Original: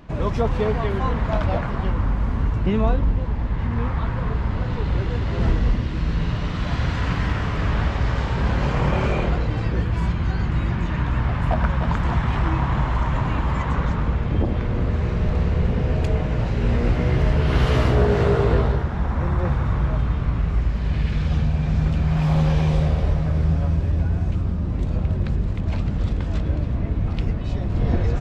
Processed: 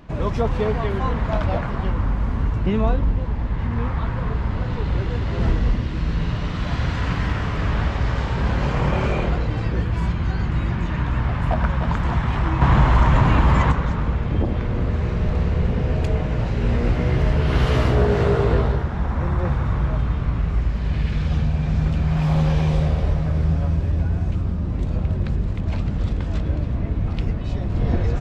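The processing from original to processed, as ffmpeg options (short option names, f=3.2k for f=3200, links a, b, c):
-filter_complex "[0:a]asettb=1/sr,asplit=3[a][b][c];[a]atrim=end=12.614[d];[b]atrim=start=12.61:end=13.72,asetpts=PTS-STARTPTS,afade=t=in:d=0.004:c=qsin,afade=t=out:st=1.106:d=0.004:c=qsin,acontrast=79[e];[c]atrim=start=13.716[f];[d][e]acrossfade=d=0.004:c1=hsin:c2=qsin[g];[g][f]acrossfade=d=0.004:c1=qsin:c2=hsin"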